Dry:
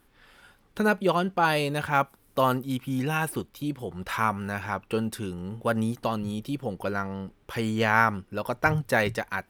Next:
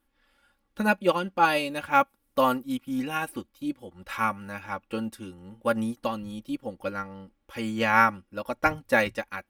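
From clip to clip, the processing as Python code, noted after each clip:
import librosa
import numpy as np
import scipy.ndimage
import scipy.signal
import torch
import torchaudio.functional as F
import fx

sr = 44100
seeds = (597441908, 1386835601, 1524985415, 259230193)

y = x + 0.7 * np.pad(x, (int(3.6 * sr / 1000.0), 0))[:len(x)]
y = fx.dynamic_eq(y, sr, hz=2500.0, q=5.5, threshold_db=-47.0, ratio=4.0, max_db=5)
y = fx.upward_expand(y, sr, threshold_db=-43.0, expansion=1.5)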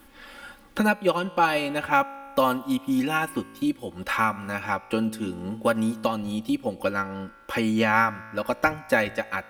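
y = fx.comb_fb(x, sr, f0_hz=55.0, decay_s=1.2, harmonics='all', damping=0.0, mix_pct=40)
y = fx.band_squash(y, sr, depth_pct=70)
y = y * 10.0 ** (6.0 / 20.0)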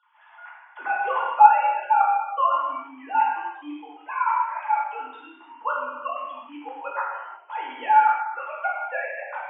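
y = fx.sine_speech(x, sr)
y = fx.highpass_res(y, sr, hz=910.0, q=11.0)
y = fx.rev_gated(y, sr, seeds[0], gate_ms=390, shape='falling', drr_db=-5.5)
y = y * 10.0 ** (-10.5 / 20.0)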